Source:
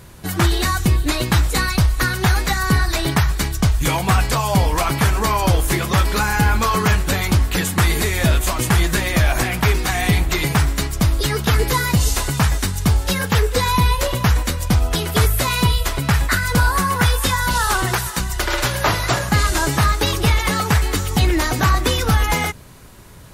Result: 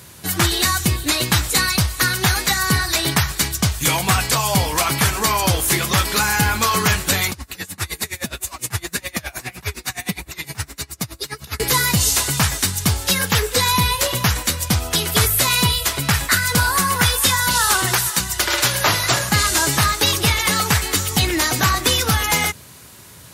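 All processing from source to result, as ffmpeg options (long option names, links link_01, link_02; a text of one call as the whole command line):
ffmpeg -i in.wav -filter_complex "[0:a]asettb=1/sr,asplit=3[link_01][link_02][link_03];[link_01]atrim=end=7.314[link_04];[link_02]atrim=start=7.31:end=11.6,asetpts=PTS-STARTPTS,afade=type=in:duration=0.004:curve=qsin,afade=type=out:start_time=4.286:duration=0.004:curve=qsin,bandreject=frequency=3200:width=9.9,flanger=delay=1.7:depth=7.7:regen=51:speed=1.7:shape=sinusoidal,aeval=exprs='val(0)*pow(10,-25*(0.5-0.5*cos(2*PI*9.7*n/s))/20)':channel_layout=same[link_05];[link_03]atrim=start=11.596[link_06];[link_04][link_05]acrossfade=duration=0.004:curve1=hsin:curve2=qsin[link_07];[link_07][link_06]acrossfade=duration=0.004:curve1=qsin:curve2=hsin,highpass=frequency=72:width=0.5412,highpass=frequency=72:width=1.3066,highshelf=frequency=2100:gain=10,volume=-2.5dB" out.wav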